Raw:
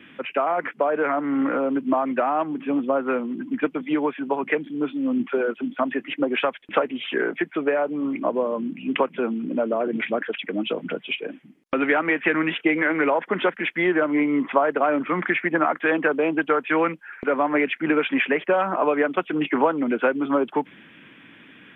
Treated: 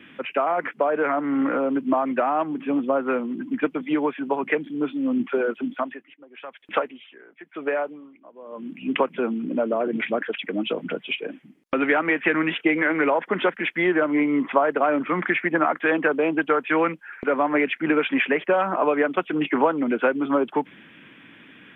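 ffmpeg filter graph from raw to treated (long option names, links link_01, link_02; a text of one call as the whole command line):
ffmpeg -i in.wav -filter_complex "[0:a]asettb=1/sr,asplit=3[link_01][link_02][link_03];[link_01]atrim=end=5.744[link_04];[link_02]atrim=start=5.74:end=8.82,asetpts=PTS-STARTPTS,afade=type=in:duration=0.004:curve=qsin,afade=type=out:start_time=3.076:duration=0.004:curve=qsin,lowshelf=frequency=380:gain=-7,aeval=exprs='val(0)*pow(10,-23*(0.5-0.5*cos(2*PI*1*n/s))/20)':channel_layout=same[link_05];[link_03]atrim=start=8.816[link_06];[link_04][link_05]acrossfade=duration=0.004:curve1=hsin:curve2=qsin[link_07];[link_07][link_06]acrossfade=duration=0.004:curve1=qsin:curve2=hsin" out.wav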